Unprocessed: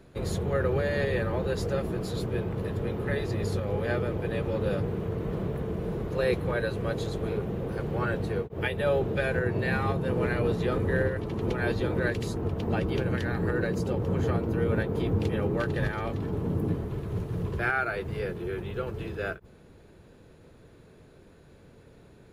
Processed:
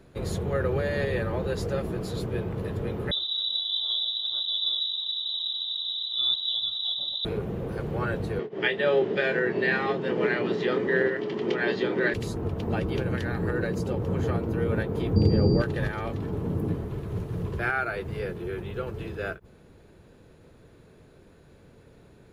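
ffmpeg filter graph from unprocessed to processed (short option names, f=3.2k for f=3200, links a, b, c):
-filter_complex "[0:a]asettb=1/sr,asplit=3[a][b][c];[a]atrim=end=3.114[d];[b]atrim=start=3.11:end=7.25,asetpts=PTS-STARTPTS,afade=t=in:d=0.004:c=qsin,afade=t=out:st=4.136:d=0.004:c=qsin,asuperstop=centerf=1700:order=12:qfactor=0.89,lowpass=f=3.4k:t=q:w=0.5098,lowpass=f=3.4k:t=q:w=0.6013,lowpass=f=3.4k:t=q:w=0.9,lowpass=f=3.4k:t=q:w=2.563,afreqshift=-4000[e];[c]atrim=start=7.246[f];[d][e]acrossfade=d=0.004:c1=hsin:c2=qsin[g];[g][f]acrossfade=d=0.004:c1=qsin:c2=hsin,asettb=1/sr,asplit=3[h][i][j];[h]atrim=end=8.394[k];[i]atrim=start=8.39:end=12.14,asetpts=PTS-STARTPTS,afade=t=in:d=0.004:c=qsin,afade=t=out:st=3.746:d=0.004:c=qsin,highpass=f=170:w=0.5412,highpass=f=170:w=1.3066,equalizer=f=410:t=q:w=4:g=8,equalizer=f=1.9k:t=q:w=4:g=9,equalizer=f=3.1k:t=q:w=4:g=8,equalizer=f=4.9k:t=q:w=4:g=5,lowpass=f=6.7k:w=0.5412,lowpass=f=6.7k:w=1.3066,bandreject=f=470:w=10,asplit=2[l][m];[m]adelay=26,volume=-9.5dB[n];[l][n]amix=inputs=2:normalize=0,atrim=end_sample=165375[o];[j]atrim=start=12.136[p];[k][o]acrossfade=d=0.004:c1=hsin:c2=qsin[q];[q][p]acrossfade=d=0.004:c1=qsin:c2=hsin,asettb=1/sr,asplit=3[r][s][t];[r]atrim=end=15.164[u];[s]atrim=start=15.16:end=15.62,asetpts=PTS-STARTPTS,afade=t=in:d=0.004:c=qsin,afade=t=out:st=0.456:d=0.004:c=qsin,tiltshelf=f=820:g=9,aeval=exprs='val(0)+0.01*sin(2*PI*4700*n/s)':c=same[v];[t]atrim=start=15.616[w];[u][v]acrossfade=d=0.004:c1=hsin:c2=qsin[x];[x][w]acrossfade=d=0.004:c1=qsin:c2=hsin"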